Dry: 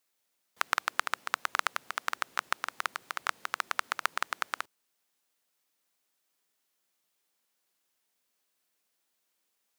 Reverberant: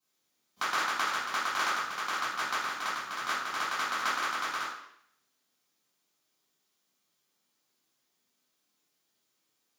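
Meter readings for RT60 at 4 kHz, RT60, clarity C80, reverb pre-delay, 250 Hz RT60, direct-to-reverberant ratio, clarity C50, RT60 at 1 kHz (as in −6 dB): 0.70 s, 0.70 s, 5.0 dB, 3 ms, 0.75 s, −11.5 dB, 1.0 dB, 0.70 s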